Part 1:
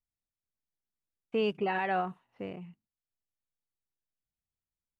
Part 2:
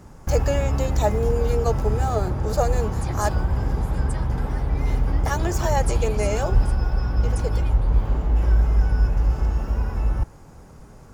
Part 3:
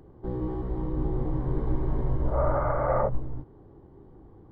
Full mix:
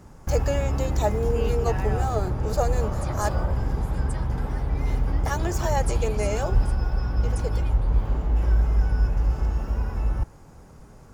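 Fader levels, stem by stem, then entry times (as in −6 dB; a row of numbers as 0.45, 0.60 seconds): −5.5, −2.5, −10.5 decibels; 0.00, 0.00, 0.45 seconds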